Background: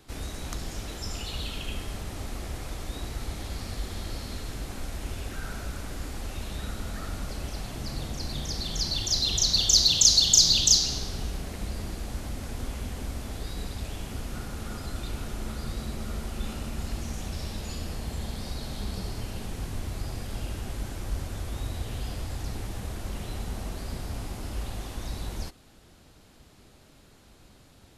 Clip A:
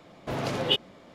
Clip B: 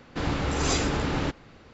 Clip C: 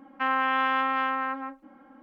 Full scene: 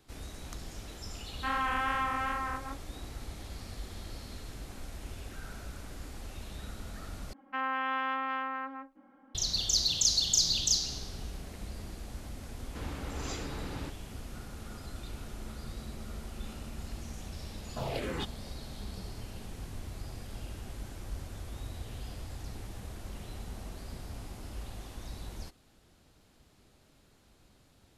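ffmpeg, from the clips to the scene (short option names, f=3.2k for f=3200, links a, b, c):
-filter_complex "[3:a]asplit=2[a][b];[0:a]volume=-8dB[c];[a]flanger=delay=16:depth=4.4:speed=2.5[d];[1:a]asplit=2[e][f];[f]afreqshift=-1.9[g];[e][g]amix=inputs=2:normalize=1[h];[c]asplit=2[i][j];[i]atrim=end=7.334[k];[b]atrim=end=2.02,asetpts=PTS-STARTPTS,volume=-7.5dB[l];[j]atrim=start=9.346[m];[d]atrim=end=2.02,asetpts=PTS-STARTPTS,volume=-3.5dB,afade=t=in:d=0.004:c=hsin,afade=t=out:st=2.016:d=0.004:c=hsin,adelay=1230[n];[2:a]atrim=end=1.73,asetpts=PTS-STARTPTS,volume=-14dB,afade=t=in:d=0.004:c=hsin,afade=t=out:st=1.726:d=0.004:c=hsin,adelay=12590[o];[h]atrim=end=1.14,asetpts=PTS-STARTPTS,volume=-3dB,afade=t=in:d=0.004:c=hsin,afade=t=out:st=1.136:d=0.004:c=hsin,adelay=17490[p];[k][l]acrossfade=d=0.004:c1=hsin:c2=hsin[q];[q][m]acrossfade=d=0.004:c1=hsin:c2=hsin[r];[r][n][o][p]amix=inputs=4:normalize=0"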